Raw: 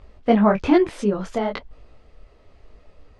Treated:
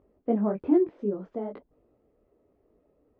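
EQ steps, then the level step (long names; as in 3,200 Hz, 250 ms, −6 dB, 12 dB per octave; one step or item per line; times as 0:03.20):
resonant band-pass 330 Hz, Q 1.5
high-frequency loss of the air 100 metres
−4.5 dB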